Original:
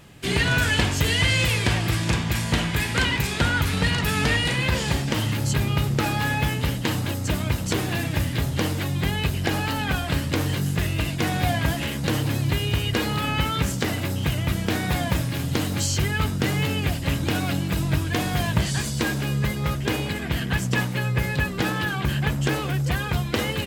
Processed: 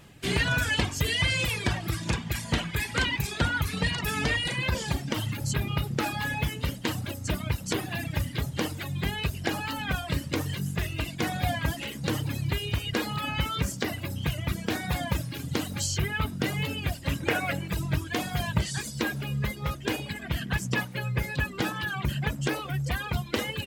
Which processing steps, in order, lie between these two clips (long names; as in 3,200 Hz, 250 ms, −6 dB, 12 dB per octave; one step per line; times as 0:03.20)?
reverb reduction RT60 2 s
0:17.20–0:17.68: octave-band graphic EQ 250/500/2,000/4,000 Hz −5/+9/+11/−6 dB
level −3 dB